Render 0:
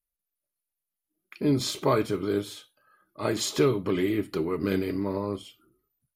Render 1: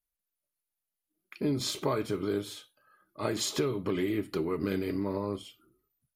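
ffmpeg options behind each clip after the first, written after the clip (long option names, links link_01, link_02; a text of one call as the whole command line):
ffmpeg -i in.wav -af "acompressor=threshold=-24dB:ratio=6,volume=-1.5dB" out.wav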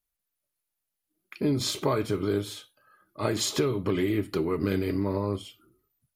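ffmpeg -i in.wav -af "equalizer=frequency=98:width_type=o:width=0.47:gain=6,volume=3.5dB" out.wav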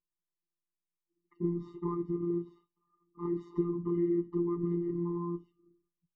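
ffmpeg -i in.wav -af "lowpass=frequency=700:width_type=q:width=4.5,afftfilt=real='hypot(re,im)*cos(PI*b)':imag='0':win_size=1024:overlap=0.75,afftfilt=real='re*eq(mod(floor(b*sr/1024/440),2),0)':imag='im*eq(mod(floor(b*sr/1024/440),2),0)':win_size=1024:overlap=0.75,volume=-2dB" out.wav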